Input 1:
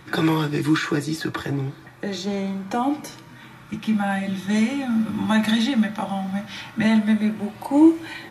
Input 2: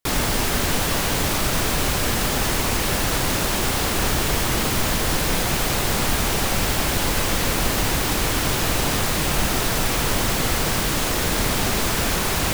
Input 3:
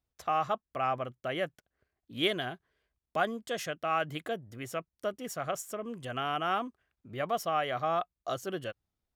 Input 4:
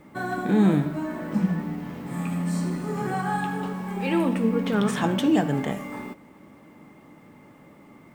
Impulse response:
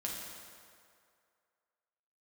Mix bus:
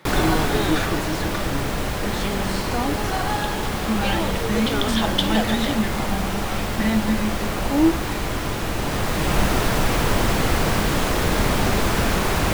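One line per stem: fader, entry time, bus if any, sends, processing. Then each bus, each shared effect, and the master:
−3.5 dB, 0.00 s, no send, high-pass filter 150 Hz 24 dB per octave
+2.0 dB, 0.00 s, send −13 dB, high-shelf EQ 3,100 Hz −10 dB; automatic ducking −7 dB, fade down 1.05 s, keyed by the third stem
−8.0 dB, 0.00 s, no send, no processing
+1.0 dB, 0.00 s, no send, high-pass filter 420 Hz 24 dB per octave; flat-topped bell 4,000 Hz +11.5 dB 1 octave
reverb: on, RT60 2.3 s, pre-delay 5 ms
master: no processing

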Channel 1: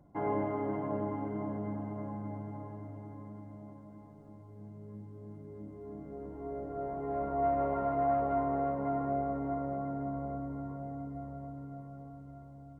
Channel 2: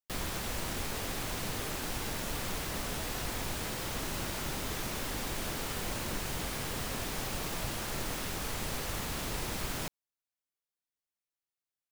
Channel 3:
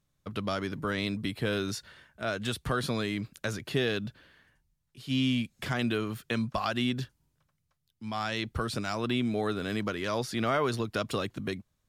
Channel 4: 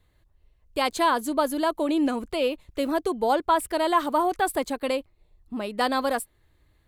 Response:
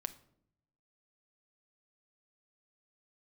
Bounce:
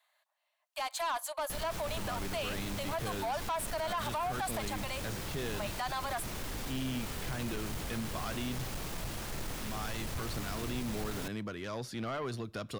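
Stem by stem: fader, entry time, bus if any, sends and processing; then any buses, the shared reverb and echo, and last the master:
muted
−3.5 dB, 1.40 s, bus A, no send, no processing
−9.5 dB, 1.60 s, bus A, send −8 dB, no processing
−1.5 dB, 0.00 s, bus A, send −19 dB, Butterworth high-pass 590 Hz 96 dB per octave
bus A: 0.0 dB, low-shelf EQ 170 Hz +5.5 dB; brickwall limiter −24 dBFS, peak gain reduction 11.5 dB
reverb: on, RT60 0.70 s, pre-delay 6 ms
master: soft clipping −30 dBFS, distortion −13 dB

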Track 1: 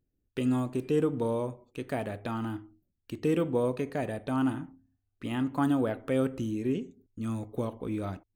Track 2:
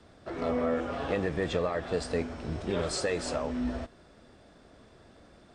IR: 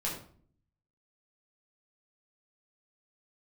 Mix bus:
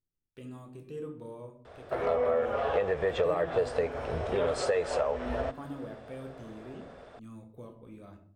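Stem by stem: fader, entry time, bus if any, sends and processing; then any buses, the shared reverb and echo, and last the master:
−19.0 dB, 0.00 s, send −4 dB, no processing
+1.5 dB, 1.65 s, no send, drawn EQ curve 110 Hz 0 dB, 290 Hz −10 dB, 450 Hz +10 dB, 3,200 Hz +2 dB, 4,500 Hz −4 dB; downward compressor 2.5 to 1, threshold −29 dBFS, peak gain reduction 8.5 dB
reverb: on, RT60 0.50 s, pre-delay 8 ms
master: no processing

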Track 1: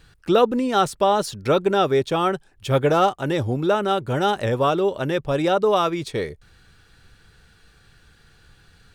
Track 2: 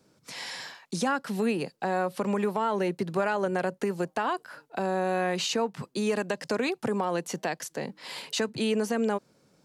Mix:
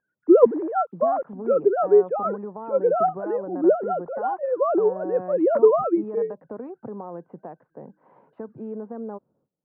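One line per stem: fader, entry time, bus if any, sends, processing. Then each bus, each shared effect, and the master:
0.0 dB, 0.00 s, no send, three sine waves on the formant tracks
−6.5 dB, 0.00 s, no send, noise gate −59 dBFS, range −18 dB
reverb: not used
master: low-pass filter 1,100 Hz 24 dB per octave; one half of a high-frequency compander decoder only

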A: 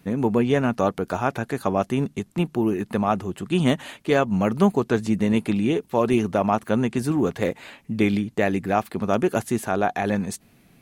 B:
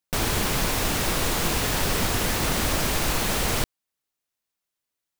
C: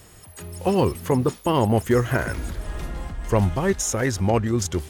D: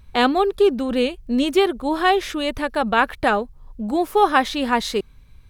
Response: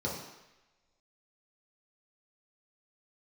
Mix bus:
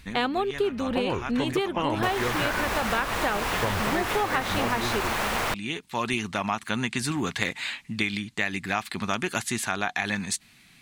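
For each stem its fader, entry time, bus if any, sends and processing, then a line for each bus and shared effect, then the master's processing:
−5.0 dB, 0.00 s, no send, octave-band graphic EQ 500/1,000/2,000/4,000/8,000 Hz −9/+4/+6/+11/+10 dB; speech leveller within 4 dB 0.5 s; automatic ducking −11 dB, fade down 0.20 s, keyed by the fourth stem
−8.0 dB, 1.90 s, no send, parametric band 1,000 Hz +12 dB 2.4 octaves
−3.0 dB, 0.30 s, no send, low-pass filter 2,800 Hz 24 dB per octave; tilt shelving filter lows −5 dB
−4.5 dB, 0.00 s, no send, no processing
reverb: not used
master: parametric band 2,200 Hz +4 dB 1.5 octaves; downward compressor, threshold −22 dBFS, peak gain reduction 9.5 dB

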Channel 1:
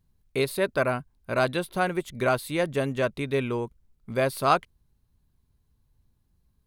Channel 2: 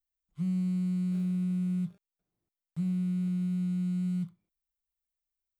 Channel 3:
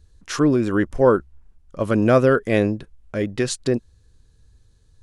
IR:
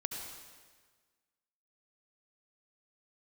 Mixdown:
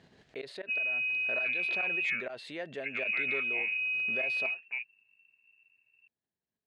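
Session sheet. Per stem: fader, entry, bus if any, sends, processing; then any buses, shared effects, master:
−17.0 dB, 0.00 s, no bus, no send, gate with flip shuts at −14 dBFS, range −24 dB; background raised ahead of every attack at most 25 dB per second
−2.5 dB, 0.30 s, bus A, no send, no processing
−19.0 dB, 1.05 s, bus A, no send, no processing
bus A: 0.0 dB, voice inversion scrambler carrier 2,700 Hz; downward compressor 3 to 1, threshold −33 dBFS, peak gain reduction 6 dB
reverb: not used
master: loudspeaker in its box 260–5,900 Hz, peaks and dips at 430 Hz +4 dB, 660 Hz +8 dB, 1,100 Hz −6 dB, 1,800 Hz +9 dB, 2,900 Hz +4 dB, 5,700 Hz −5 dB

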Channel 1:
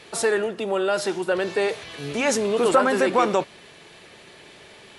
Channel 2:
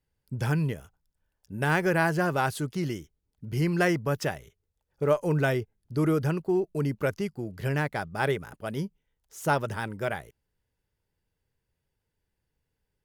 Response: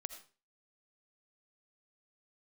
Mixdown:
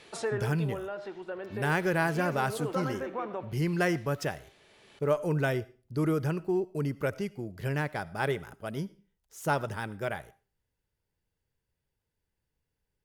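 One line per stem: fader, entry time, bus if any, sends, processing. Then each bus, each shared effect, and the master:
−9.0 dB, 0.00 s, send −7.5 dB, treble cut that deepens with the level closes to 1,900 Hz, closed at −19 dBFS; automatic ducking −14 dB, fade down 1.00 s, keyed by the second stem
−6.0 dB, 0.00 s, send −4.5 dB, no processing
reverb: on, RT60 0.35 s, pre-delay 40 ms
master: no processing

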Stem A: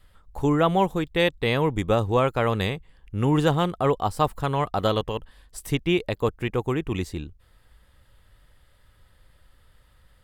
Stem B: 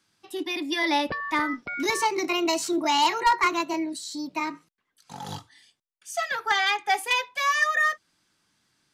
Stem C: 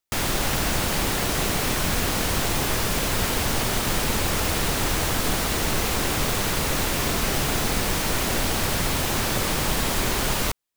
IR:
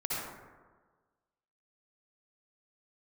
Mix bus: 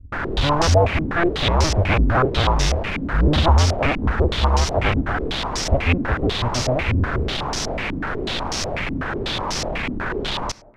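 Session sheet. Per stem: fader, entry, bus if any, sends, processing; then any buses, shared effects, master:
−1.5 dB, 0.00 s, no send, sub-harmonics by changed cycles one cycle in 2, inverted; low shelf with overshoot 130 Hz +13 dB, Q 1.5
muted
+3.0 dB, 0.00 s, send −24 dB, soft clipping −27 dBFS, distortion −9 dB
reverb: on, RT60 1.4 s, pre-delay 53 ms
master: low-pass on a step sequencer 8.1 Hz 270–5,600 Hz

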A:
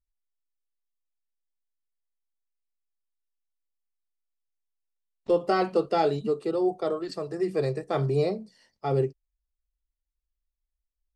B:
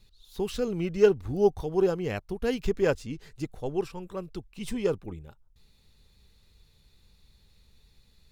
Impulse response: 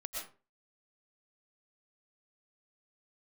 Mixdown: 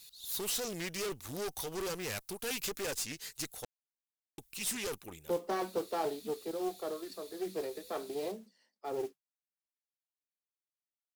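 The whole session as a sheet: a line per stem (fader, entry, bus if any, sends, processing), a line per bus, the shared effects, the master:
−6.0 dB, 0.00 s, no send, Butterworth high-pass 190 Hz 72 dB per octave; noise that follows the level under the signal 20 dB; flanger 0.46 Hz, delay 1.1 ms, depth 5 ms, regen −87%
+2.0 dB, 0.00 s, muted 0:03.65–0:04.38, no send, spectral tilt +4.5 dB per octave; tube saturation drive 37 dB, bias 0.6; high-shelf EQ 6,400 Hz +9.5 dB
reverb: not used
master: highs frequency-modulated by the lows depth 0.22 ms

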